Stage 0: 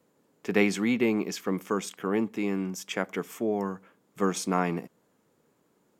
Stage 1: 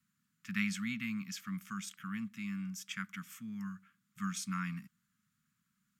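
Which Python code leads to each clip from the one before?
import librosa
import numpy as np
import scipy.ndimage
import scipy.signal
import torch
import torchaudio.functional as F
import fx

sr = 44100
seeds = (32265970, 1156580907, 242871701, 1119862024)

y = scipy.signal.sosfilt(scipy.signal.ellip(3, 1.0, 40, [210.0, 1300.0], 'bandstop', fs=sr, output='sos'), x)
y = y * 10.0 ** (-6.5 / 20.0)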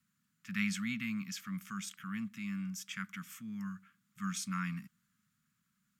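y = fx.transient(x, sr, attack_db=-3, sustain_db=1)
y = y * 10.0 ** (1.0 / 20.0)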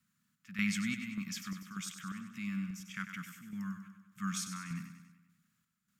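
y = fx.chopper(x, sr, hz=1.7, depth_pct=60, duty_pct=60)
y = fx.echo_feedback(y, sr, ms=97, feedback_pct=56, wet_db=-9.5)
y = y * 10.0 ** (1.0 / 20.0)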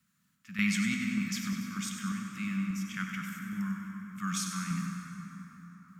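y = fx.rev_plate(x, sr, seeds[0], rt60_s=4.7, hf_ratio=0.45, predelay_ms=0, drr_db=2.5)
y = y * 10.0 ** (3.5 / 20.0)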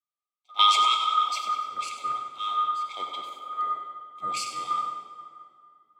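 y = fx.band_swap(x, sr, width_hz=1000)
y = fx.bandpass_q(y, sr, hz=2000.0, q=0.83)
y = fx.band_widen(y, sr, depth_pct=70)
y = y * 10.0 ** (8.0 / 20.0)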